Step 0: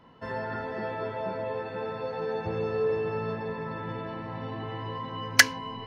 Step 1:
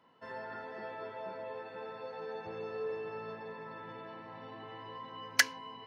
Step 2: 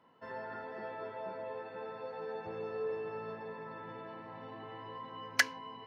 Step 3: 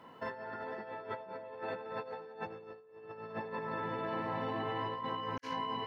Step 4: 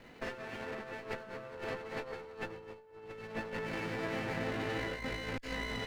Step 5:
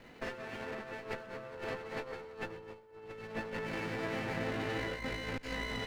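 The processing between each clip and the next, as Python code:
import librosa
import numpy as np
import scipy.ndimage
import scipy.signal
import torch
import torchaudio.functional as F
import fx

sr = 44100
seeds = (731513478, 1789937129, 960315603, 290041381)

y1 = fx.highpass(x, sr, hz=410.0, slope=6)
y1 = F.gain(torch.from_numpy(y1), -8.0).numpy()
y2 = fx.high_shelf(y1, sr, hz=3000.0, db=-7.5)
y2 = F.gain(torch.from_numpy(y2), 1.0).numpy()
y3 = fx.over_compress(y2, sr, threshold_db=-47.0, ratio=-0.5)
y3 = F.gain(torch.from_numpy(y3), 6.0).numpy()
y4 = fx.lower_of_two(y3, sr, delay_ms=0.43)
y4 = F.gain(torch.from_numpy(y4), 2.0).numpy()
y5 = y4 + 10.0 ** (-20.5 / 20.0) * np.pad(y4, (int(127 * sr / 1000.0), 0))[:len(y4)]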